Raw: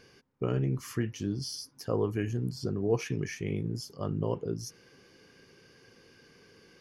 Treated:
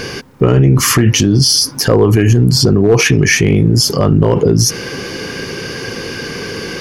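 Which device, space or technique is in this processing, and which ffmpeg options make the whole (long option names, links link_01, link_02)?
loud club master: -af "acompressor=threshold=-32dB:ratio=2,asoftclip=type=hard:threshold=-24.5dB,alimiter=level_in=35.5dB:limit=-1dB:release=50:level=0:latency=1,volume=-1dB"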